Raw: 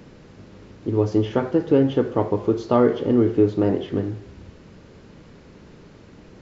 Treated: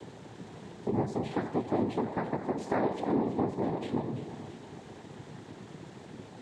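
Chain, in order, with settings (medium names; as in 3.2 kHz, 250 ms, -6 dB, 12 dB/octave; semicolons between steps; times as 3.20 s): compression 3:1, threshold -30 dBFS, peak gain reduction 13.5 dB; noise-vocoded speech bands 6; two-band feedback delay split 640 Hz, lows 225 ms, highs 336 ms, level -11.5 dB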